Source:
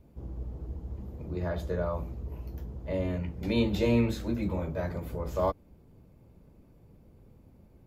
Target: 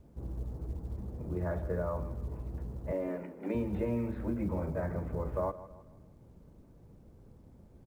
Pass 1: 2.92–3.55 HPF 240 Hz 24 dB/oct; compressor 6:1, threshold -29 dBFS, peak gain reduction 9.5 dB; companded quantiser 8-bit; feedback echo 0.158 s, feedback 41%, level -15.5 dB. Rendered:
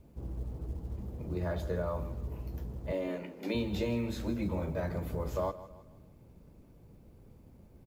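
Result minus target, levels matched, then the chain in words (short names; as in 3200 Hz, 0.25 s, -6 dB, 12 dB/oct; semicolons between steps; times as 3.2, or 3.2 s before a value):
2000 Hz band +3.5 dB
2.92–3.55 HPF 240 Hz 24 dB/oct; compressor 6:1, threshold -29 dBFS, peak gain reduction 9.5 dB; LPF 1900 Hz 24 dB/oct; companded quantiser 8-bit; feedback echo 0.158 s, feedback 41%, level -15.5 dB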